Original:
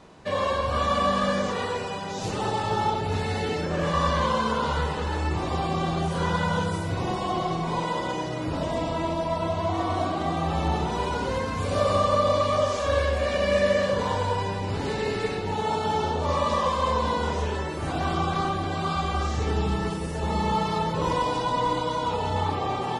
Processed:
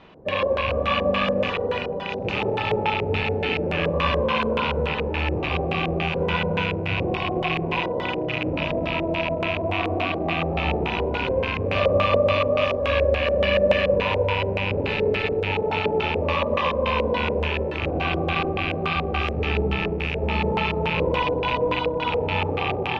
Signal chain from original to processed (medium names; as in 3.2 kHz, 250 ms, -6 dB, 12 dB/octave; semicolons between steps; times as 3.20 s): rattle on loud lows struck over -33 dBFS, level -20 dBFS; low-pass 7.2 kHz 24 dB/octave; bucket-brigade echo 360 ms, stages 2048, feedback 76%, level -11.5 dB; LFO low-pass square 3.5 Hz 510–2900 Hz